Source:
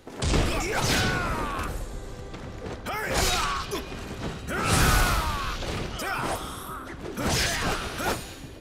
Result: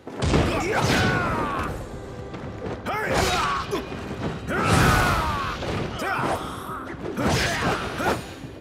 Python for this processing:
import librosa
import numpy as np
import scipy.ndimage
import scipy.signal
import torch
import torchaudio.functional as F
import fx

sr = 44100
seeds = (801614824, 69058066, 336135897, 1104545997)

y = scipy.signal.sosfilt(scipy.signal.butter(2, 78.0, 'highpass', fs=sr, output='sos'), x)
y = fx.high_shelf(y, sr, hz=3400.0, db=-10.5)
y = F.gain(torch.from_numpy(y), 5.5).numpy()